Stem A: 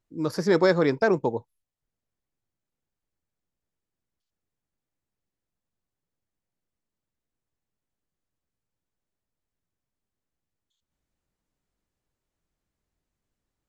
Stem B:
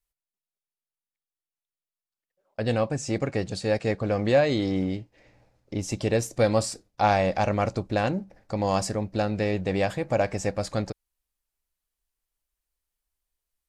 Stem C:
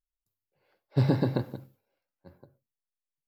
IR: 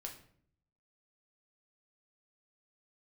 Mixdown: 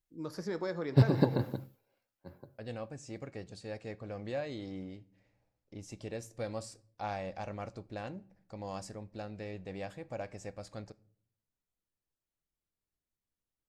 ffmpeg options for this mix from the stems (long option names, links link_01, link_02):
-filter_complex "[0:a]acompressor=threshold=-20dB:ratio=6,volume=-15dB,asplit=3[link_01][link_02][link_03];[link_02]volume=-3.5dB[link_04];[1:a]volume=-18dB,asplit=2[link_05][link_06];[link_06]volume=-9.5dB[link_07];[2:a]volume=2dB[link_08];[link_03]apad=whole_len=144638[link_09];[link_08][link_09]sidechaincompress=threshold=-45dB:ratio=8:attack=16:release=101[link_10];[3:a]atrim=start_sample=2205[link_11];[link_04][link_07]amix=inputs=2:normalize=0[link_12];[link_12][link_11]afir=irnorm=-1:irlink=0[link_13];[link_01][link_05][link_10][link_13]amix=inputs=4:normalize=0"